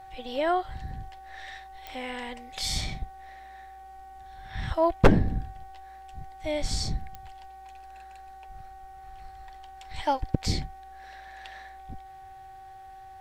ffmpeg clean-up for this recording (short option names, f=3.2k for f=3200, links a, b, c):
-af "adeclick=t=4,bandreject=f=373.6:t=h:w=4,bandreject=f=747.2:t=h:w=4,bandreject=f=1.1208k:t=h:w=4,bandreject=f=1.4944k:t=h:w=4,bandreject=f=1.868k:t=h:w=4,bandreject=f=770:w=30"